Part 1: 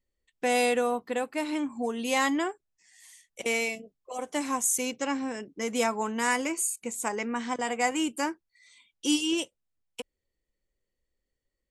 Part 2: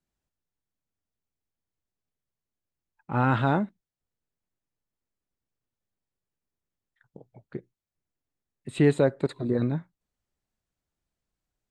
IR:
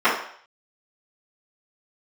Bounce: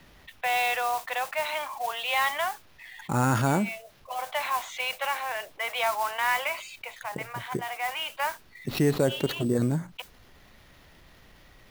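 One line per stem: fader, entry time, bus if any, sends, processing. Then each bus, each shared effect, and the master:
-2.0 dB, 0.00 s, no send, Chebyshev band-pass 620–3800 Hz, order 4; modulation noise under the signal 14 dB; auto duck -14 dB, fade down 0.30 s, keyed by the second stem
-3.5 dB, 0.00 s, no send, sample-rate reducer 8200 Hz, jitter 0%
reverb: off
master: fast leveller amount 50%

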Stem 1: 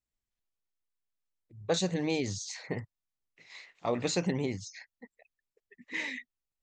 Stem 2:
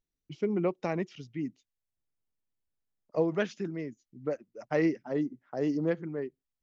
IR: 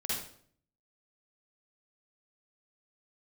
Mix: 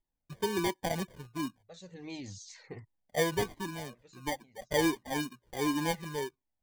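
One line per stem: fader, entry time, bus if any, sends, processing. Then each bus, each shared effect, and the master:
-5.0 dB, 0.00 s, no send, auto duck -20 dB, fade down 0.25 s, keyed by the second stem
+3.0 dB, 0.00 s, no send, sample-and-hold 33×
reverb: off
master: cascading flanger falling 1.4 Hz

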